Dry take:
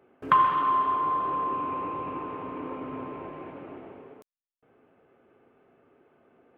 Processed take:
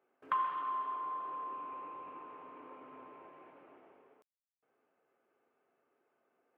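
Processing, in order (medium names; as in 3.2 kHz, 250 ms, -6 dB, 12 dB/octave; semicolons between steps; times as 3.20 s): high-pass 1.5 kHz 6 dB/octave; treble shelf 2.1 kHz -11.5 dB; trim -5.5 dB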